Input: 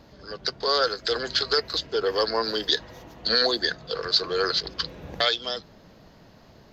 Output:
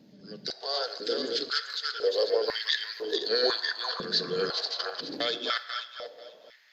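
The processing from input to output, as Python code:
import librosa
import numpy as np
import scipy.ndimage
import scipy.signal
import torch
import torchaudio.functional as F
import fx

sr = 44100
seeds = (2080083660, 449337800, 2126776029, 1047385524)

y = fx.reverse_delay_fb(x, sr, ms=245, feedback_pct=42, wet_db=-2.5)
y = fx.peak_eq(y, sr, hz=1100.0, db=fx.steps((0.0, -13.0), (2.48, -4.0)), octaves=1.2)
y = fx.room_shoebox(y, sr, seeds[0], volume_m3=1600.0, walls='mixed', distance_m=0.44)
y = fx.filter_held_highpass(y, sr, hz=2.0, low_hz=200.0, high_hz=1900.0)
y = y * librosa.db_to_amplitude(-7.0)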